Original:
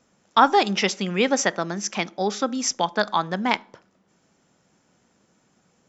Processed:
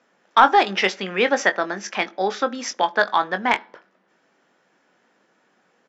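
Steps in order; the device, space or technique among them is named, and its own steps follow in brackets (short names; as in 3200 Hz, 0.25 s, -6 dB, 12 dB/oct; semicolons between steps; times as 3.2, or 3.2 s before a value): intercom (BPF 340–3700 Hz; bell 1700 Hz +5.5 dB 0.43 oct; soft clip -4.5 dBFS, distortion -20 dB; doubler 21 ms -10 dB); gain +3 dB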